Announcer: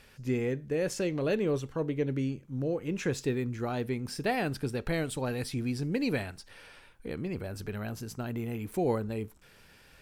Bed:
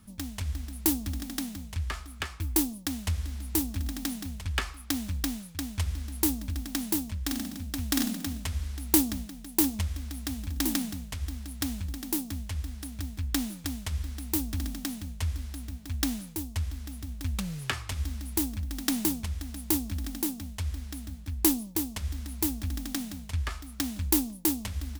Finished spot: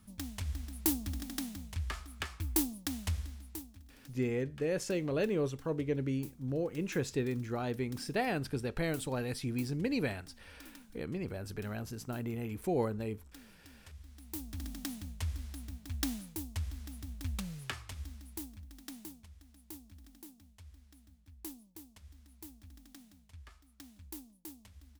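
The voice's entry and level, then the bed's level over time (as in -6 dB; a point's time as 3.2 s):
3.90 s, -3.0 dB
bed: 3.15 s -5 dB
3.91 s -26 dB
13.56 s -26 dB
14.82 s -6 dB
17.34 s -6 dB
19.25 s -22 dB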